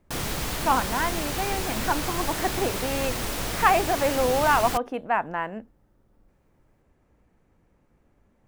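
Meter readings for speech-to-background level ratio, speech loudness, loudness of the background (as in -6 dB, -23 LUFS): 3.0 dB, -26.0 LUFS, -29.0 LUFS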